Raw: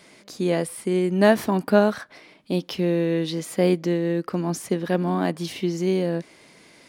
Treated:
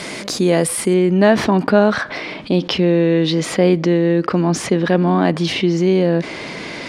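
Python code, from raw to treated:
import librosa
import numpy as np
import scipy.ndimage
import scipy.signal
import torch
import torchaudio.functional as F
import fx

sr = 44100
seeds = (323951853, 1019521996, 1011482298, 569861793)

y = fx.lowpass(x, sr, hz=fx.steps((0.0, 11000.0), (0.94, 4500.0)), slope=12)
y = fx.env_flatten(y, sr, amount_pct=50)
y = y * librosa.db_to_amplitude(3.5)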